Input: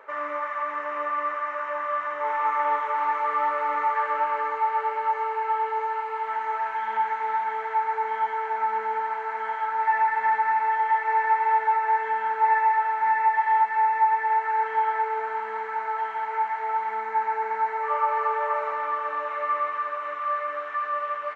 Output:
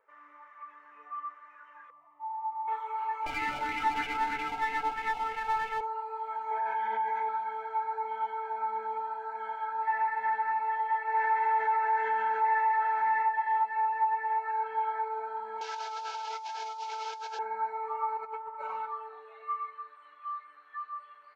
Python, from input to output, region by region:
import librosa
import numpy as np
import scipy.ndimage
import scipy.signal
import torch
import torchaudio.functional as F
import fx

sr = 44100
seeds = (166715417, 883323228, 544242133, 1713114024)

y = fx.chain(x, sr, fx.lowpass(hz=1600.0, slope=12),
    fx.fixed_phaser(hz=310.0, stages=8), at=(1.9, 2.68))
y = fx.chain(y, sr, fx.lower_of_two(delay_ms=1.4),
    fx.bell_lfo(hz=3.1, low_hz=750.0, high_hz=2400.0, db=7), at=(3.26, 5.81))
y = fx.chain(y, sr, fx.high_shelf(hz=3000.0, db=-6.5),
    fx.notch_comb(f0_hz=1400.0),
    fx.env_flatten(amount_pct=70), at=(6.51, 7.29))
y = fx.chain(y, sr, fx.resample_bad(factor=3, down='none', up='filtered'),
    fx.env_flatten(amount_pct=50), at=(11.14, 13.23))
y = fx.chain(y, sr, fx.delta_mod(bps=32000, step_db=-28.5),
    fx.highpass(hz=440.0, slope=24),
    fx.over_compress(threshold_db=-30.0, ratio=-1.0), at=(15.61, 17.39))
y = fx.chain(y, sr, fx.comb(ms=5.4, depth=0.47),
    fx.over_compress(threshold_db=-28.0, ratio=-0.5), at=(18.17, 18.86))
y = fx.noise_reduce_blind(y, sr, reduce_db=16)
y = fx.notch(y, sr, hz=590.0, q=17.0)
y = F.gain(torch.from_numpy(y), -7.0).numpy()